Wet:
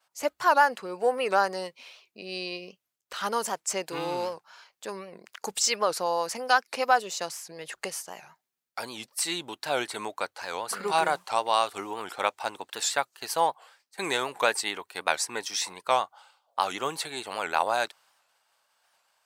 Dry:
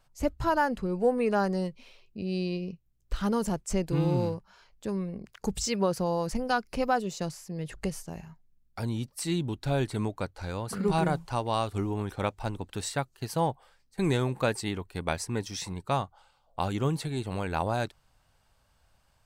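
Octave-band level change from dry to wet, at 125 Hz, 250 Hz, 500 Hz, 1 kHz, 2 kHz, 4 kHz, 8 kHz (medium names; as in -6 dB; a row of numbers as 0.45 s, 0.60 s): -20.0 dB, -10.5 dB, +0.5 dB, +5.5 dB, +7.0 dB, +7.5 dB, +7.5 dB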